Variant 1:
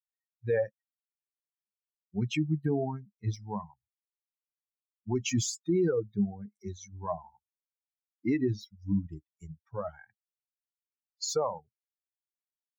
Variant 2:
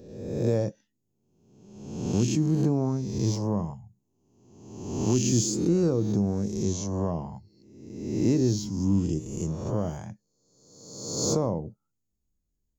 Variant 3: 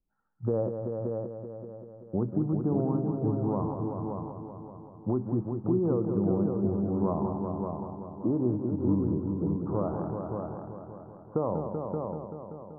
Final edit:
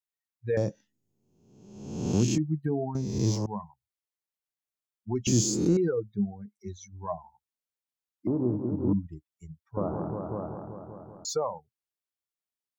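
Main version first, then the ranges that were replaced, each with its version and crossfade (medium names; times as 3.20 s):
1
0.57–2.38 s: from 2
2.95–3.46 s: from 2
5.27–5.77 s: from 2
8.27–8.93 s: from 3
9.77–11.25 s: from 3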